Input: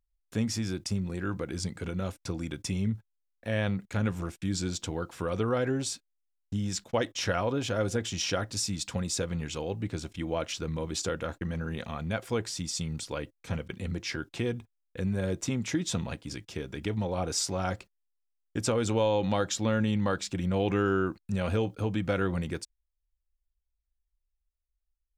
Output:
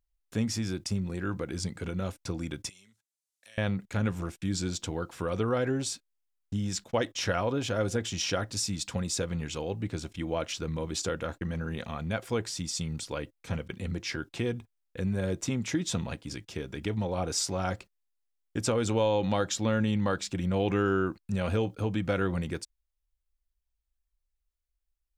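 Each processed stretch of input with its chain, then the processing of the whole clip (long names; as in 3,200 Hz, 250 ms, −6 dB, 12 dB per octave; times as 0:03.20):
0:02.69–0:03.58: resonant band-pass 7,900 Hz, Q 1.2 + multiband upward and downward compressor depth 70%
whole clip: no processing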